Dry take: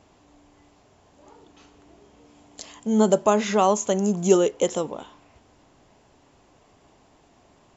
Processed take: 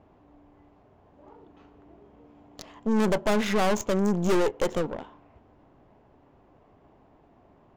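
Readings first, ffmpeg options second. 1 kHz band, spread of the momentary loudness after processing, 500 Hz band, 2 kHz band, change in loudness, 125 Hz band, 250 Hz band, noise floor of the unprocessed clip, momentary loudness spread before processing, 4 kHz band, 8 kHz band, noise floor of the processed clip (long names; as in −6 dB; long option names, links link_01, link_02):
−5.5 dB, 9 LU, −5.0 dB, +3.0 dB, −4.5 dB, −1.0 dB, −3.0 dB, −59 dBFS, 13 LU, −1.5 dB, can't be measured, −59 dBFS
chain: -af "aeval=exprs='(tanh(17.8*val(0)+0.7)-tanh(0.7))/17.8':channel_layout=same,adynamicsmooth=sensitivity=7:basefreq=1600,volume=4.5dB"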